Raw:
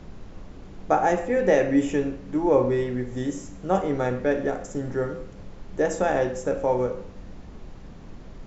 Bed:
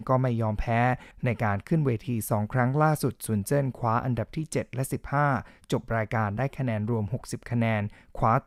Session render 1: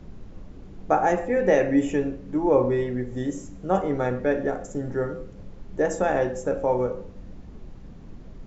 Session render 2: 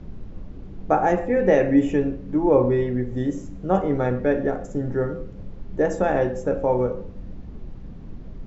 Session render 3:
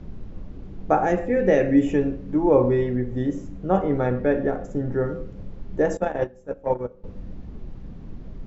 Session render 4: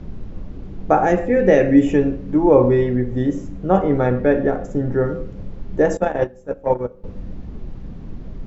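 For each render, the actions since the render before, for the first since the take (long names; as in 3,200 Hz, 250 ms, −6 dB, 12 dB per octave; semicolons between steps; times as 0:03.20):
broadband denoise 6 dB, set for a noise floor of −43 dBFS
low-pass filter 5,400 Hz 12 dB per octave; low-shelf EQ 380 Hz +5.5 dB
0:01.04–0:01.87: parametric band 930 Hz −6.5 dB; 0:02.96–0:05.05: high-frequency loss of the air 71 metres; 0:05.97–0:07.04: noise gate −20 dBFS, range −19 dB
level +5 dB; brickwall limiter −2 dBFS, peak gain reduction 1 dB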